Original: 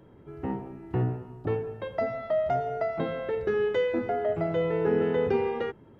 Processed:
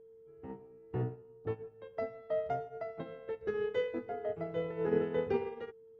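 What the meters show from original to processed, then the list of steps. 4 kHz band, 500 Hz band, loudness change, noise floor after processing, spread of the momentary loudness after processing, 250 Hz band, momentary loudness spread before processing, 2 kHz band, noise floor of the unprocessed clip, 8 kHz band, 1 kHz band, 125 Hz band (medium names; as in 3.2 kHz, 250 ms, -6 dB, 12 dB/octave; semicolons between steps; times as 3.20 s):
-9.5 dB, -8.5 dB, -8.5 dB, -57 dBFS, 13 LU, -9.5 dB, 9 LU, -10.0 dB, -53 dBFS, no reading, -10.5 dB, -10.0 dB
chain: whistle 450 Hz -31 dBFS; upward expansion 2.5:1, over -34 dBFS; trim -4.5 dB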